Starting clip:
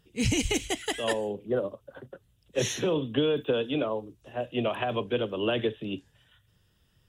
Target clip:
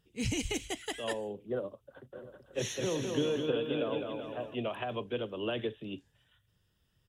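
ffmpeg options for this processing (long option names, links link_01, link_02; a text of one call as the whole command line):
ffmpeg -i in.wav -filter_complex "[0:a]asplit=3[link_01][link_02][link_03];[link_01]afade=type=out:start_time=2.13:duration=0.02[link_04];[link_02]aecho=1:1:210|378|512.4|619.9|705.9:0.631|0.398|0.251|0.158|0.1,afade=type=in:start_time=2.13:duration=0.02,afade=type=out:start_time=4.54:duration=0.02[link_05];[link_03]afade=type=in:start_time=4.54:duration=0.02[link_06];[link_04][link_05][link_06]amix=inputs=3:normalize=0,volume=-7dB" out.wav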